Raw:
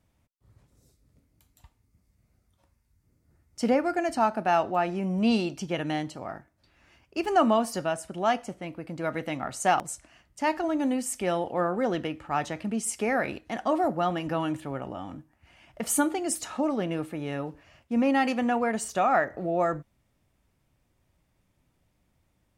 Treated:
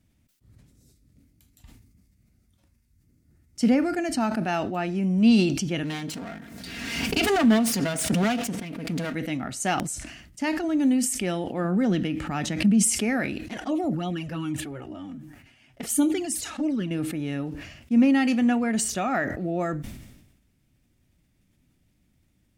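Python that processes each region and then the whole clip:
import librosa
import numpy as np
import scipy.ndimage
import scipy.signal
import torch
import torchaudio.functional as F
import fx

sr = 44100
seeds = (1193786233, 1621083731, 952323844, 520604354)

y = fx.chain(x, sr, fx.lower_of_two(delay_ms=4.3),
    fx.highpass(hz=96.0, slope=12),
    fx.pre_swell(db_per_s=33.0), at=(5.83, 9.14))
y = fx.chain(y, sr, fx.peak_eq(hz=190.0, db=9.0, octaves=0.34),
    fx.pre_swell(db_per_s=110.0), at=(11.64, 12.83))
y = fx.chain(y, sr, fx.low_shelf(hz=140.0, db=-2.5),
    fx.env_flanger(rest_ms=8.6, full_db=-21.5), at=(13.46, 16.91))
y = fx.graphic_eq(y, sr, hz=(250, 500, 1000), db=(5, -6, -10))
y = fx.sustainer(y, sr, db_per_s=54.0)
y = y * 10.0 ** (3.0 / 20.0)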